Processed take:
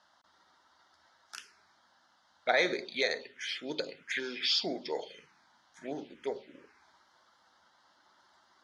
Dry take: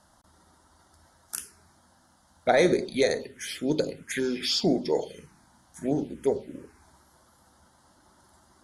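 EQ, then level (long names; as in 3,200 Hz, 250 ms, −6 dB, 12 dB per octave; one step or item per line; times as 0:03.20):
resonant band-pass 5,300 Hz, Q 0.58
high-frequency loss of the air 240 metres
+7.5 dB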